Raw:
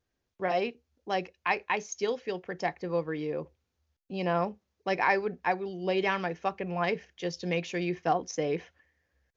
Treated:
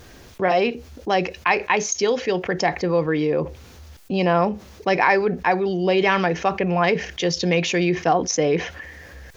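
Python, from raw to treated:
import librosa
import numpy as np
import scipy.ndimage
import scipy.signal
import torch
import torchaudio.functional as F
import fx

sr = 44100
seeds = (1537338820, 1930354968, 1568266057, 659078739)

y = fx.env_flatten(x, sr, amount_pct=50)
y = F.gain(torch.from_numpy(y), 7.0).numpy()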